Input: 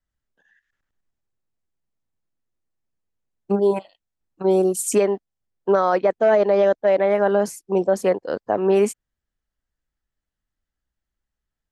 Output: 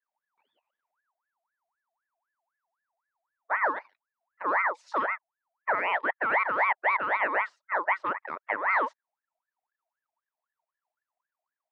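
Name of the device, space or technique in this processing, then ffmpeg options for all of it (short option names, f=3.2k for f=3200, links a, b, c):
voice changer toy: -af "aeval=exprs='val(0)*sin(2*PI*1200*n/s+1200*0.45/3.9*sin(2*PI*3.9*n/s))':c=same,highpass=460,equalizer=f=600:t=q:w=4:g=6,equalizer=f=940:t=q:w=4:g=7,equalizer=f=1.9k:t=q:w=4:g=5,equalizer=f=3.3k:t=q:w=4:g=-6,lowpass=f=3.7k:w=0.5412,lowpass=f=3.7k:w=1.3066,volume=-8.5dB"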